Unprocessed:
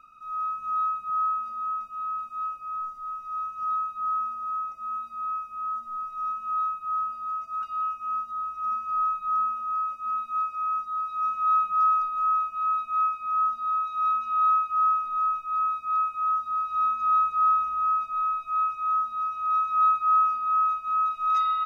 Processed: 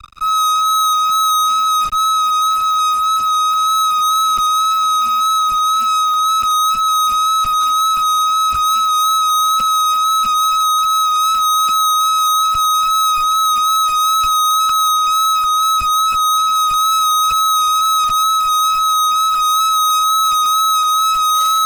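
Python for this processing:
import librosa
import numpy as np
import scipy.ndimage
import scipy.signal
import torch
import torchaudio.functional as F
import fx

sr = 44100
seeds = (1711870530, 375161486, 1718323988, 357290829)

y = fx.reverse_delay(x, sr, ms=186, wet_db=-9)
y = fx.fuzz(y, sr, gain_db=49.0, gate_db=-50.0)
y = fx.wow_flutter(y, sr, seeds[0], rate_hz=2.1, depth_cents=19.0)
y = fx.band_widen(y, sr, depth_pct=100)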